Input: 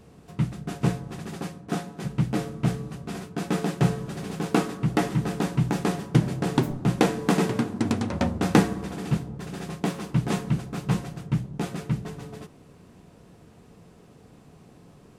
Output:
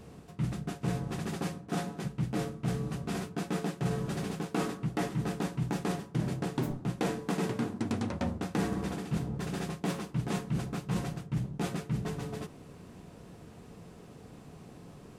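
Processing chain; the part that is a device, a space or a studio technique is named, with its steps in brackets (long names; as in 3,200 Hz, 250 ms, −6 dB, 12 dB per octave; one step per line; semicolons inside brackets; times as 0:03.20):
compression on the reversed sound (reversed playback; downward compressor 5 to 1, threshold −31 dBFS, peak gain reduction 17.5 dB; reversed playback)
level +1.5 dB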